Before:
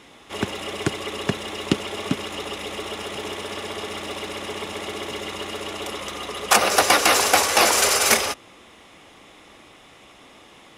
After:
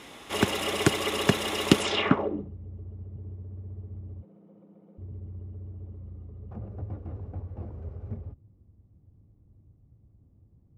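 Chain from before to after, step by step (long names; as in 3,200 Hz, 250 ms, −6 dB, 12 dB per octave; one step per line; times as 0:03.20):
0:04.22–0:04.98: frequency shifter +110 Hz
low-pass filter sweep 14,000 Hz → 100 Hz, 0:01.76–0:02.52
level +1.5 dB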